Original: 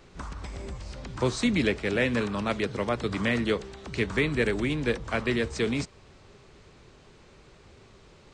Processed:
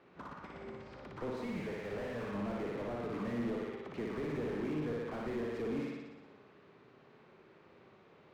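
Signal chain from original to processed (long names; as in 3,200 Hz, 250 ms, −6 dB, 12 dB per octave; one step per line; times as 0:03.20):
0:01.43–0:02.34: parametric band 290 Hz −14.5 dB 0.81 octaves
downward compressor, threshold −25 dBFS, peak gain reduction 6 dB
band-pass filter 190–2,200 Hz
on a send: flutter between parallel walls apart 10.1 metres, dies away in 1.1 s
on the sum: slew-rate limiting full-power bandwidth 17 Hz
level −6.5 dB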